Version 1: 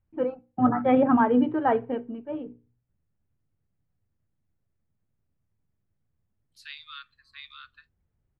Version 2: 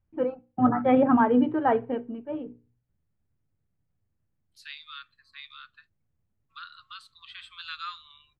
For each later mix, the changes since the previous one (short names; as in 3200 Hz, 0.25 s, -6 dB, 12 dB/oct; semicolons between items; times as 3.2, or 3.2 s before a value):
second voice: entry -2.00 s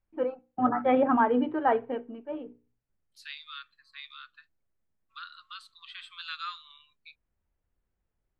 second voice: entry -1.40 s; master: add bell 110 Hz -13 dB 2.1 oct